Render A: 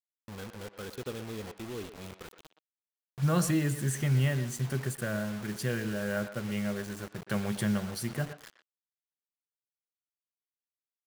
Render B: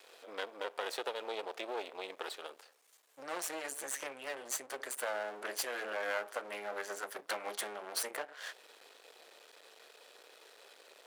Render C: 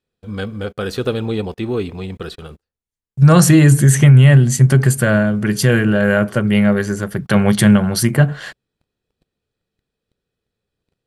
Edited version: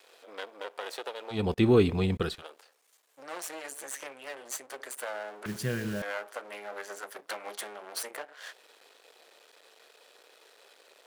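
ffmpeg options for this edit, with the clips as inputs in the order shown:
-filter_complex "[1:a]asplit=3[a][b][c];[a]atrim=end=1.54[d];[2:a]atrim=start=1.3:end=2.43[e];[b]atrim=start=2.19:end=5.462[f];[0:a]atrim=start=5.458:end=6.022[g];[c]atrim=start=6.018[h];[d][e]acrossfade=d=0.24:c1=tri:c2=tri[i];[i][f]acrossfade=d=0.24:c1=tri:c2=tri[j];[j][g]acrossfade=d=0.004:c1=hsin:c2=hsin[k];[k][h]acrossfade=d=0.004:c1=hsin:c2=hsin"

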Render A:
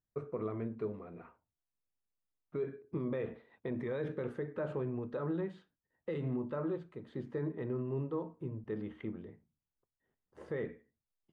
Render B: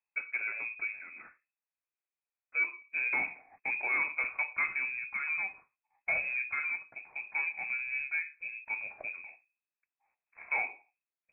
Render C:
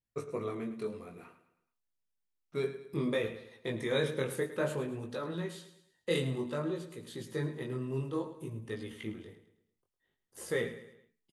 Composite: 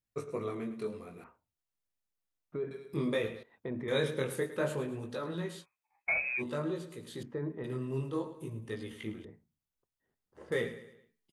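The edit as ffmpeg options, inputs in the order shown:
-filter_complex "[0:a]asplit=4[a][b][c][d];[2:a]asplit=6[e][f][g][h][i][j];[e]atrim=end=1.242[k];[a]atrim=start=1.238:end=2.712[l];[f]atrim=start=2.708:end=3.432[m];[b]atrim=start=3.428:end=3.882[n];[g]atrim=start=3.878:end=5.66[o];[1:a]atrim=start=5.6:end=6.43[p];[h]atrim=start=6.37:end=7.232[q];[c]atrim=start=7.228:end=7.642[r];[i]atrim=start=7.638:end=9.252[s];[d]atrim=start=9.248:end=10.522[t];[j]atrim=start=10.518[u];[k][l]acrossfade=d=0.004:c1=hsin:c2=hsin[v];[v][m]acrossfade=d=0.004:c1=hsin:c2=hsin[w];[w][n]acrossfade=d=0.004:c1=hsin:c2=hsin[x];[x][o]acrossfade=d=0.004:c1=hsin:c2=hsin[y];[y][p]acrossfade=d=0.06:c1=tri:c2=tri[z];[z][q]acrossfade=d=0.06:c1=tri:c2=tri[aa];[aa][r]acrossfade=d=0.004:c1=hsin:c2=hsin[ab];[ab][s]acrossfade=d=0.004:c1=hsin:c2=hsin[ac];[ac][t]acrossfade=d=0.004:c1=hsin:c2=hsin[ad];[ad][u]acrossfade=d=0.004:c1=hsin:c2=hsin"

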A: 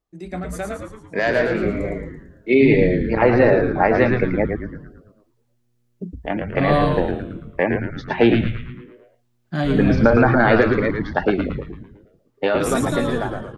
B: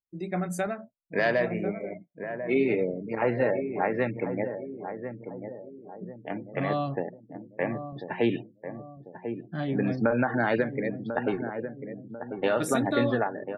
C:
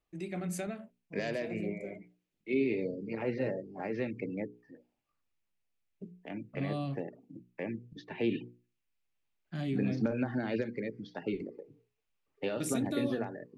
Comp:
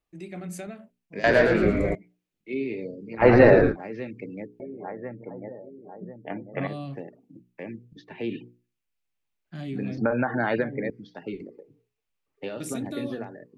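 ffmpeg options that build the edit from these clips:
-filter_complex "[0:a]asplit=2[a][b];[1:a]asplit=2[c][d];[2:a]asplit=5[e][f][g][h][i];[e]atrim=end=1.242[j];[a]atrim=start=1.238:end=1.952[k];[f]atrim=start=1.948:end=3.27[l];[b]atrim=start=3.17:end=3.77[m];[g]atrim=start=3.67:end=4.602[n];[c]atrim=start=4.598:end=6.672[o];[h]atrim=start=6.668:end=9.982[p];[d]atrim=start=9.978:end=10.902[q];[i]atrim=start=10.898[r];[j][k]acrossfade=d=0.004:c1=hsin:c2=hsin[s];[s][l]acrossfade=d=0.004:c1=hsin:c2=hsin[t];[t][m]acrossfade=d=0.1:c1=tri:c2=tri[u];[u][n]acrossfade=d=0.1:c1=tri:c2=tri[v];[v][o]acrossfade=d=0.004:c1=hsin:c2=hsin[w];[w][p]acrossfade=d=0.004:c1=hsin:c2=hsin[x];[x][q]acrossfade=d=0.004:c1=hsin:c2=hsin[y];[y][r]acrossfade=d=0.004:c1=hsin:c2=hsin"

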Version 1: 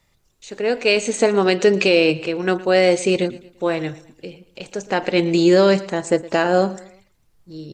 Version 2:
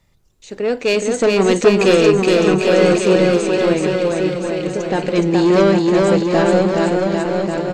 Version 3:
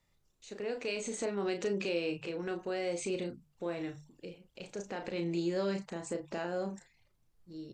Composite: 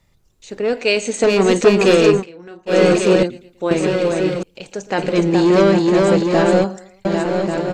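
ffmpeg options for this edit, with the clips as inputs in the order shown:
-filter_complex "[0:a]asplit=4[a][b][c][d];[1:a]asplit=6[e][f][g][h][i][j];[e]atrim=end=0.732[k];[a]atrim=start=0.728:end=1.242[l];[f]atrim=start=1.238:end=2.25[m];[2:a]atrim=start=2.15:end=2.76[n];[g]atrim=start=2.66:end=3.232[o];[b]atrim=start=3.228:end=3.712[p];[h]atrim=start=3.708:end=4.432[q];[c]atrim=start=4.428:end=4.982[r];[i]atrim=start=4.978:end=6.642[s];[d]atrim=start=6.638:end=7.052[t];[j]atrim=start=7.048[u];[k][l]acrossfade=d=0.004:c1=hsin:c2=hsin[v];[v][m]acrossfade=d=0.004:c1=hsin:c2=hsin[w];[w][n]acrossfade=d=0.1:c1=tri:c2=tri[x];[x][o]acrossfade=d=0.1:c1=tri:c2=tri[y];[y][p]acrossfade=d=0.004:c1=hsin:c2=hsin[z];[z][q]acrossfade=d=0.004:c1=hsin:c2=hsin[aa];[aa][r]acrossfade=d=0.004:c1=hsin:c2=hsin[ab];[ab][s]acrossfade=d=0.004:c1=hsin:c2=hsin[ac];[ac][t]acrossfade=d=0.004:c1=hsin:c2=hsin[ad];[ad][u]acrossfade=d=0.004:c1=hsin:c2=hsin"

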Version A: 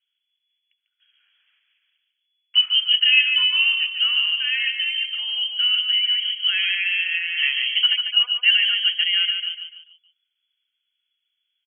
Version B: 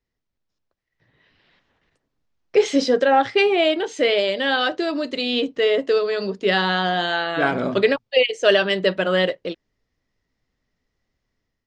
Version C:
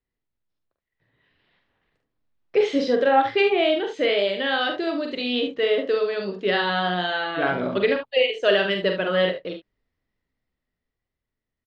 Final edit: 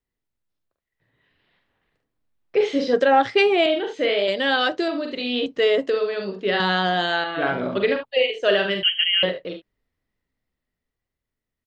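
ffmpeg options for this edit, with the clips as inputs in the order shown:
-filter_complex "[1:a]asplit=4[a][b][c][d];[2:a]asplit=6[e][f][g][h][i][j];[e]atrim=end=2.932[k];[a]atrim=start=2.928:end=3.662[l];[f]atrim=start=3.658:end=4.282[m];[b]atrim=start=4.278:end=4.882[n];[g]atrim=start=4.878:end=5.462[o];[c]atrim=start=5.458:end=5.902[p];[h]atrim=start=5.898:end=6.602[q];[d]atrim=start=6.598:end=7.242[r];[i]atrim=start=7.238:end=8.832[s];[0:a]atrim=start=8.828:end=9.232[t];[j]atrim=start=9.228[u];[k][l]acrossfade=d=0.004:c1=hsin:c2=hsin[v];[v][m]acrossfade=d=0.004:c1=hsin:c2=hsin[w];[w][n]acrossfade=d=0.004:c1=hsin:c2=hsin[x];[x][o]acrossfade=d=0.004:c1=hsin:c2=hsin[y];[y][p]acrossfade=d=0.004:c1=hsin:c2=hsin[z];[z][q]acrossfade=d=0.004:c1=hsin:c2=hsin[aa];[aa][r]acrossfade=d=0.004:c1=hsin:c2=hsin[ab];[ab][s]acrossfade=d=0.004:c1=hsin:c2=hsin[ac];[ac][t]acrossfade=d=0.004:c1=hsin:c2=hsin[ad];[ad][u]acrossfade=d=0.004:c1=hsin:c2=hsin"

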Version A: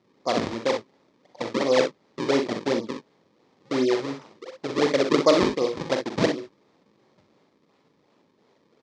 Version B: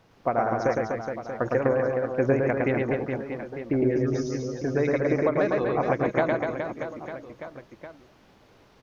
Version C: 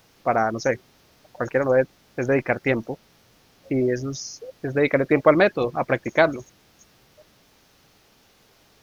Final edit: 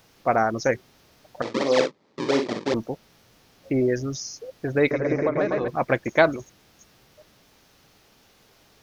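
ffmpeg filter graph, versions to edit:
-filter_complex "[2:a]asplit=3[a][b][c];[a]atrim=end=1.422[d];[0:a]atrim=start=1.418:end=2.742[e];[b]atrim=start=2.738:end=4.912[f];[1:a]atrim=start=4.908:end=5.682[g];[c]atrim=start=5.678[h];[d][e]acrossfade=d=0.004:c1=hsin:c2=hsin[i];[i][f]acrossfade=d=0.004:c1=hsin:c2=hsin[j];[j][g]acrossfade=d=0.004:c1=hsin:c2=hsin[k];[k][h]acrossfade=d=0.004:c1=hsin:c2=hsin"

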